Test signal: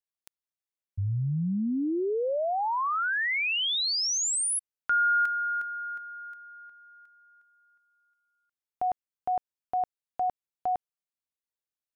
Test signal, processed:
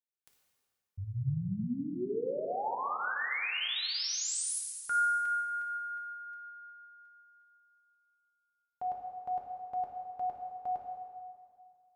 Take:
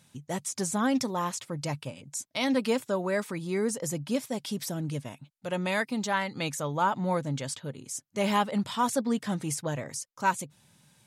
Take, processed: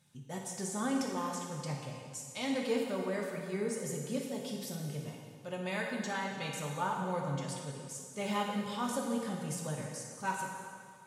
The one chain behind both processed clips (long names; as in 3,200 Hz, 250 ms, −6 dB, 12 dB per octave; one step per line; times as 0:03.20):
notch comb filter 330 Hz
flutter between parallel walls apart 9.8 metres, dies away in 0.24 s
dense smooth reverb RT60 2.1 s, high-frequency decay 0.85×, pre-delay 0 ms, DRR 0 dB
level −8.5 dB